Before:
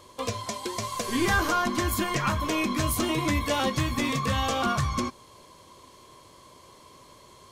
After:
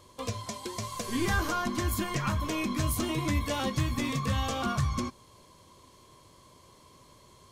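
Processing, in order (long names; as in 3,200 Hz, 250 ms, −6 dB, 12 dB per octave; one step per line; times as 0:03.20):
bass and treble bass +6 dB, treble +2 dB
level −6 dB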